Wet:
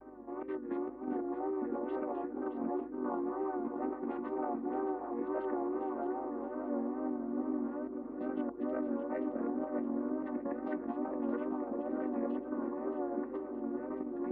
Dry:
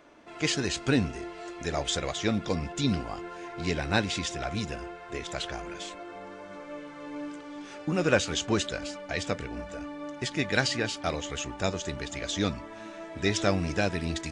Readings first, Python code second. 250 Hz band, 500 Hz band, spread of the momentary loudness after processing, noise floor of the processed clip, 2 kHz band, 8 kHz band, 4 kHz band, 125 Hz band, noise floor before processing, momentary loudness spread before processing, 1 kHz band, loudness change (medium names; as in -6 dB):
-2.5 dB, -4.5 dB, 3 LU, -44 dBFS, -20.0 dB, under -40 dB, under -40 dB, under -25 dB, -45 dBFS, 15 LU, -4.0 dB, -6.5 dB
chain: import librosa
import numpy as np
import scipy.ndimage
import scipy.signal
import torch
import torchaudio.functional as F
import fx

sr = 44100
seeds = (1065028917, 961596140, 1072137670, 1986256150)

p1 = fx.chord_vocoder(x, sr, chord='minor triad', root=59)
p2 = scipy.signal.sosfilt(scipy.signal.butter(4, 1300.0, 'lowpass', fs=sr, output='sos'), p1)
p3 = fx.over_compress(p2, sr, threshold_db=-38.0, ratio=-1.0)
p4 = fx.add_hum(p3, sr, base_hz=50, snr_db=34)
p5 = fx.wow_flutter(p4, sr, seeds[0], rate_hz=2.1, depth_cents=85.0)
y = p5 + fx.echo_feedback(p5, sr, ms=620, feedback_pct=37, wet_db=-9, dry=0)